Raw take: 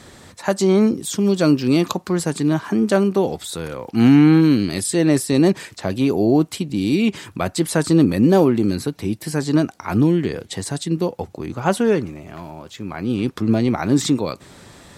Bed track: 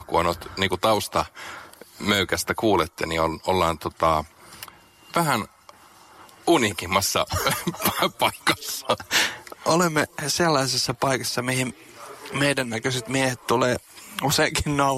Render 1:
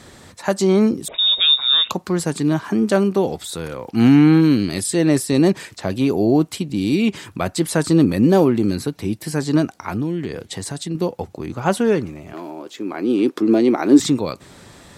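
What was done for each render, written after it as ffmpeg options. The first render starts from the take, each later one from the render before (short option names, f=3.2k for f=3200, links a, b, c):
-filter_complex "[0:a]asettb=1/sr,asplit=3[a][b][c];[a]atrim=end=1.084[d];[b]atrim=start=1.08:end=1.91,asetpts=PTS-STARTPTS,afade=t=in:d=0.004:c=qsin,afade=t=out:st=0.826:d=0.004:c=qsin,lowpass=f=3.3k:t=q:w=0.5098,lowpass=f=3.3k:t=q:w=0.6013,lowpass=f=3.3k:t=q:w=0.9,lowpass=f=3.3k:t=q:w=2.563,afreqshift=-3900[e];[c]atrim=start=1.906[f];[d][e]acrossfade=d=0.004:c1=hsin:c2=qsin[g];[g][f]acrossfade=d=0.004:c1=qsin:c2=hsin,asettb=1/sr,asplit=3[h][i][j];[h]atrim=end=9.894[k];[i]atrim=start=9.89:end=10.95,asetpts=PTS-STARTPTS,afade=t=in:d=0.004:c=qsin,afade=t=out:st=1.056:d=0.004:c=qsin,acompressor=threshold=-24dB:ratio=2:attack=3.2:release=140:knee=1:detection=peak[l];[j]atrim=start=10.946[m];[k][l]acrossfade=d=0.004:c1=hsin:c2=qsin[n];[n][m]acrossfade=d=0.004:c1=qsin:c2=hsin,asettb=1/sr,asplit=3[o][p][q];[o]atrim=end=12.334[r];[p]atrim=start=12.33:end=14,asetpts=PTS-STARTPTS,afade=t=in:d=0.004:c=qsin,afade=t=out:st=1.666:d=0.004:c=qsin,highpass=f=320:t=q:w=2.8[s];[q]atrim=start=13.996[t];[r][s]acrossfade=d=0.004:c1=hsin:c2=qsin[u];[u][t]acrossfade=d=0.004:c1=qsin:c2=hsin"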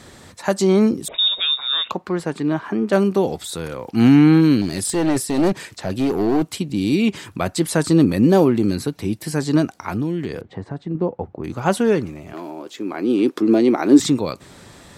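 -filter_complex "[0:a]asettb=1/sr,asplit=3[a][b][c];[a]atrim=end=1.284[d];[b]atrim=start=1.28:end=2.93,asetpts=PTS-STARTPTS,afade=t=in:d=0.004:c=qsin,afade=t=out:st=1.646:d=0.004:c=qsin,bass=f=250:g=-6,treble=f=4k:g=-14[e];[c]atrim=start=2.926[f];[d][e]acrossfade=d=0.004:c1=hsin:c2=qsin[g];[g][f]acrossfade=d=0.004:c1=qsin:c2=hsin,asettb=1/sr,asplit=3[h][i][j];[h]atrim=end=4.614[k];[i]atrim=start=4.61:end=6.43,asetpts=PTS-STARTPTS,afade=t=in:d=0.004:c=qsin,afade=t=out:st=1.816:d=0.004:c=qsin,aeval=exprs='clip(val(0),-1,0.133)':c=same[l];[j]atrim=start=6.426[m];[k][l]acrossfade=d=0.004:c1=hsin:c2=qsin[n];[n][m]acrossfade=d=0.004:c1=qsin:c2=hsin,asettb=1/sr,asplit=3[o][p][q];[o]atrim=end=10.414[r];[p]atrim=start=10.41:end=11.44,asetpts=PTS-STARTPTS,afade=t=in:d=0.004:c=qsin,afade=t=out:st=1.026:d=0.004:c=qsin,lowpass=1.3k[s];[q]atrim=start=11.436[t];[r][s]acrossfade=d=0.004:c1=hsin:c2=qsin[u];[u][t]acrossfade=d=0.004:c1=qsin:c2=hsin"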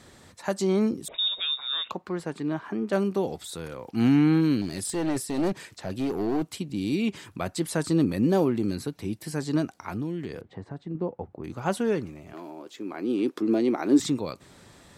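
-af "volume=-8.5dB"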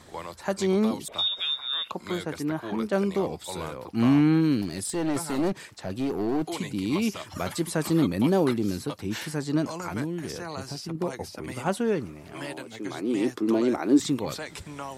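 -filter_complex "[1:a]volume=-16.5dB[a];[0:a][a]amix=inputs=2:normalize=0"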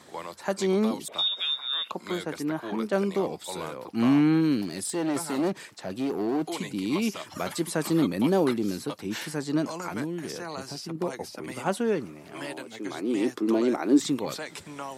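-af "highpass=170"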